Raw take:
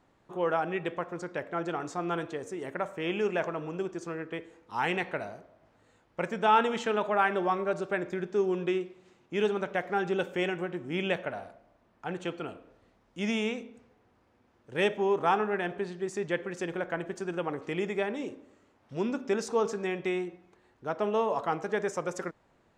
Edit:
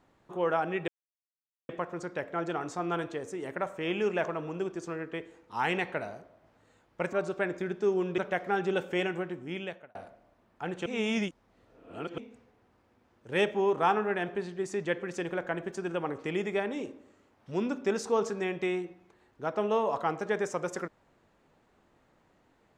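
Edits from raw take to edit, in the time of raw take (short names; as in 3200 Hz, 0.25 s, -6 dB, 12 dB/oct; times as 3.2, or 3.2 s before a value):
0.88 insert silence 0.81 s
6.32–7.65 cut
8.7–9.61 cut
10.62–11.38 fade out linear
12.29–13.61 reverse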